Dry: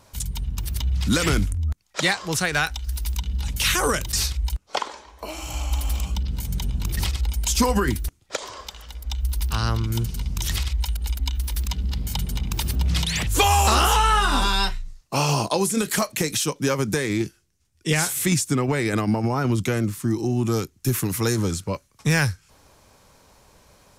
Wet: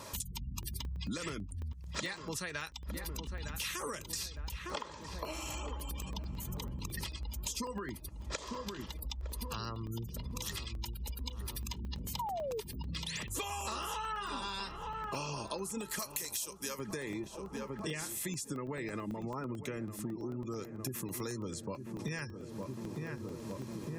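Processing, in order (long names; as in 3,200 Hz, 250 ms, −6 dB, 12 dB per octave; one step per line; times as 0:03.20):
0:15.99–0:16.79: RIAA equalisation recording
notch comb filter 750 Hz
gate on every frequency bin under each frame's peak −30 dB strong
low-shelf EQ 150 Hz −7.5 dB
feedback echo with a low-pass in the loop 908 ms, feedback 67%, low-pass 1,200 Hz, level −12.5 dB
0:12.19–0:12.61: sound drawn into the spectrogram fall 410–1,000 Hz −20 dBFS
downward compressor 8 to 1, threshold −47 dBFS, peak gain reduction 32.5 dB
regular buffer underruns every 0.11 s, samples 64, zero, from 0:00.63
level +9 dB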